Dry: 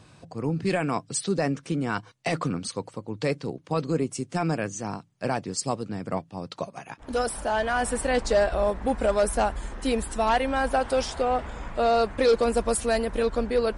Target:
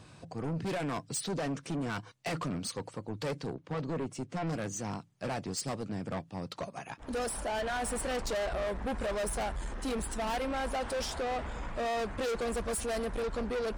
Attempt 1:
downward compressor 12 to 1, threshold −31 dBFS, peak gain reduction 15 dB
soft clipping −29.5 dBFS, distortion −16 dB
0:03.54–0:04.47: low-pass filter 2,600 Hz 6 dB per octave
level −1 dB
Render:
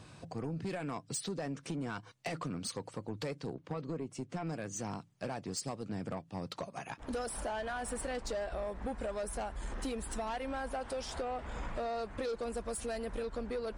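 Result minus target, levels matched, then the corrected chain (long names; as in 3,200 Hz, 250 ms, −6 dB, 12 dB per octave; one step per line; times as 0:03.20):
downward compressor: peak gain reduction +15 dB
soft clipping −29.5 dBFS, distortion −6 dB
0:03.54–0:04.47: low-pass filter 2,600 Hz 6 dB per octave
level −1 dB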